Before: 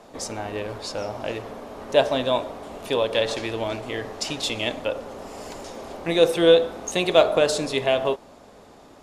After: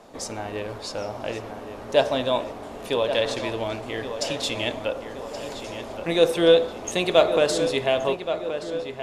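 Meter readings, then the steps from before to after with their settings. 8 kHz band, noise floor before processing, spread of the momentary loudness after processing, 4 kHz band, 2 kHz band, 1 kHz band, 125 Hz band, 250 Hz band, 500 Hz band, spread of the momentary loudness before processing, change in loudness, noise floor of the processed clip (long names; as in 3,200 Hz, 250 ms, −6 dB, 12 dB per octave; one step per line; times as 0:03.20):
−1.0 dB, −49 dBFS, 15 LU, −1.0 dB, −0.5 dB, −0.5 dB, −0.5 dB, −0.5 dB, −0.5 dB, 19 LU, −1.0 dB, −38 dBFS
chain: feedback echo with a low-pass in the loop 1,124 ms, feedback 59%, low-pass 3,400 Hz, level −9.5 dB
level −1 dB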